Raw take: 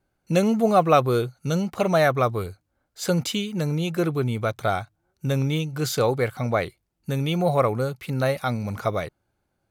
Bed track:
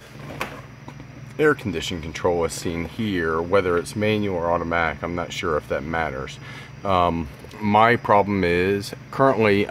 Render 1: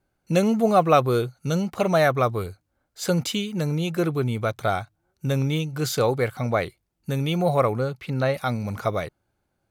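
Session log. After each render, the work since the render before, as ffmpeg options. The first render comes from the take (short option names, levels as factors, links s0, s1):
-filter_complex "[0:a]asettb=1/sr,asplit=3[s0][s1][s2];[s0]atrim=end=7.744[s3];[s1]atrim=start=7.74:end=8.34,asetpts=PTS-STARTPTS,afade=t=in:d=0.004:c=qsin,afade=t=out:st=0.596:d=0.004:c=qsin,acrossover=split=5700[s4][s5];[s5]acompressor=threshold=0.00112:ratio=4:attack=1:release=60[s6];[s4][s6]amix=inputs=2:normalize=0[s7];[s2]atrim=start=8.336[s8];[s3][s7]acrossfade=d=0.004:c1=hsin:c2=qsin[s9];[s9][s8]acrossfade=d=0.004:c1=qsin:c2=hsin"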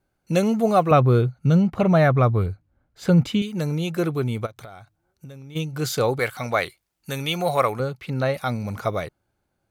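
-filter_complex "[0:a]asettb=1/sr,asplit=3[s0][s1][s2];[s0]atrim=end=0.914[s3];[s1]atrim=start=0.91:end=3.42,asetpts=PTS-STARTPTS,afade=t=in:d=0.004:c=qsin,afade=t=out:st=2.506:d=0.004:c=qsin,bass=f=250:g=10,treble=f=4000:g=-12[s4];[s2]atrim=start=3.416[s5];[s3][s4]acrossfade=d=0.004:c1=hsin:c2=qsin[s6];[s6][s5]acrossfade=d=0.004:c1=qsin:c2=hsin,asplit=3[s7][s8][s9];[s7]afade=t=out:st=4.45:d=0.02[s10];[s8]acompressor=threshold=0.0141:ratio=10:attack=3.2:release=140:knee=1:detection=peak,afade=t=in:st=4.45:d=0.02,afade=t=out:st=5.55:d=0.02[s11];[s9]afade=t=in:st=5.55:d=0.02[s12];[s10][s11][s12]amix=inputs=3:normalize=0,asettb=1/sr,asplit=3[s13][s14][s15];[s13]atrim=end=6.194[s16];[s14]atrim=start=6.19:end=7.8,asetpts=PTS-STARTPTS,afade=t=in:d=0.004:c=qsin,afade=t=out:st=1.606:d=0.004:c=qsin,tiltshelf=f=630:g=-6.5[s17];[s15]atrim=start=7.796[s18];[s16][s17]acrossfade=d=0.004:c1=hsin:c2=qsin[s19];[s19][s18]acrossfade=d=0.004:c1=qsin:c2=hsin"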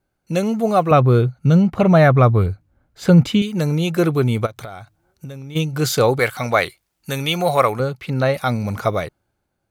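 -af "dynaudnorm=f=180:g=9:m=2.51"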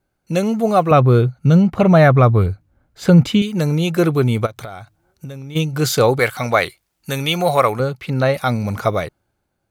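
-af "volume=1.19,alimiter=limit=0.794:level=0:latency=1"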